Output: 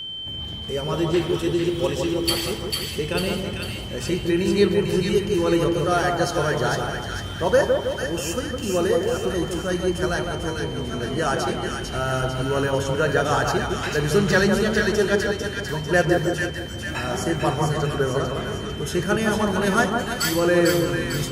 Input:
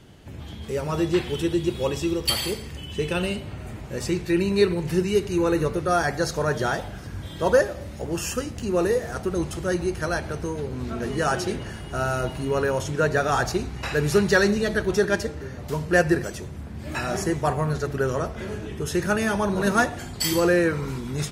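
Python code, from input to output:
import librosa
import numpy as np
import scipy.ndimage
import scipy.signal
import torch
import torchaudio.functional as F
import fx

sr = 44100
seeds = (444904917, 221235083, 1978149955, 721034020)

y = x + 10.0 ** (-30.0 / 20.0) * np.sin(2.0 * np.pi * 3100.0 * np.arange(len(x)) / sr)
y = fx.echo_split(y, sr, split_hz=1400.0, low_ms=160, high_ms=448, feedback_pct=52, wet_db=-3.5)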